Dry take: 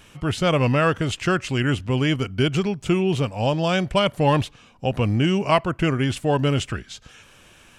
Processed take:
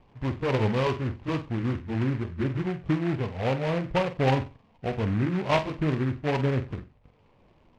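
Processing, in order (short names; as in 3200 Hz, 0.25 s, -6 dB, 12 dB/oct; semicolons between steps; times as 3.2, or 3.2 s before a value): gliding pitch shift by -3 st ending unshifted; steep low-pass 1100 Hz 72 dB/oct; flutter echo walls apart 7.8 m, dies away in 0.29 s; noise-modulated delay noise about 1500 Hz, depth 0.098 ms; gain -4.5 dB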